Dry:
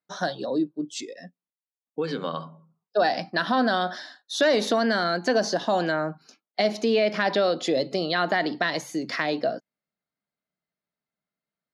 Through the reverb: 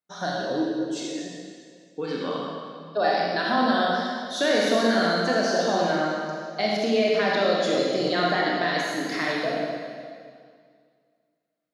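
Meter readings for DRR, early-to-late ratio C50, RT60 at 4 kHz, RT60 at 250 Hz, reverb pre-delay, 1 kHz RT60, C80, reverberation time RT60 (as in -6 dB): -4.0 dB, -1.5 dB, 1.9 s, 2.3 s, 26 ms, 2.0 s, 0.0 dB, 2.1 s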